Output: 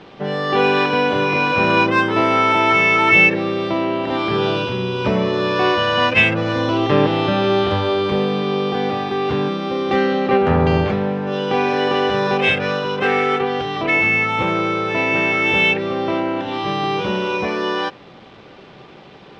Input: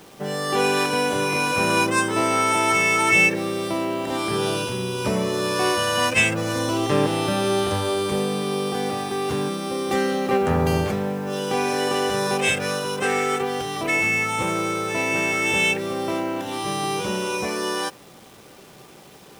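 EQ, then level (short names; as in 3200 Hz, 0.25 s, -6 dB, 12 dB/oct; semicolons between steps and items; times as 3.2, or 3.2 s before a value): LPF 3900 Hz 24 dB/oct; +5.0 dB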